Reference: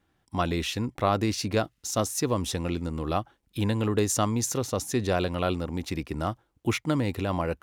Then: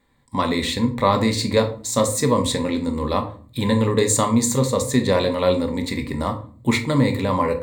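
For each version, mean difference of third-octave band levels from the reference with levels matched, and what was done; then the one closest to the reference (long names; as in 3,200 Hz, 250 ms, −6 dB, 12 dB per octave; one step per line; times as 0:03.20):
5.0 dB: EQ curve with evenly spaced ripples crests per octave 1, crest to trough 13 dB
rectangular room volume 380 cubic metres, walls furnished, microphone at 1.2 metres
level +4.5 dB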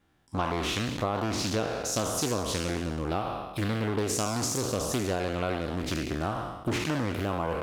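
8.5 dB: peak hold with a decay on every bin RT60 1.08 s
downward compressor 4 to 1, threshold −26 dBFS, peak gain reduction 8.5 dB
highs frequency-modulated by the lows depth 0.45 ms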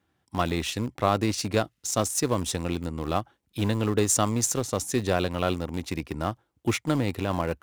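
2.5 dB: high-pass filter 58 Hz 24 dB per octave
dynamic equaliser 8,100 Hz, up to +6 dB, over −49 dBFS, Q 1.8
in parallel at −9 dB: centre clipping without the shift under −24 dBFS
on the sum: level −1.5 dB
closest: third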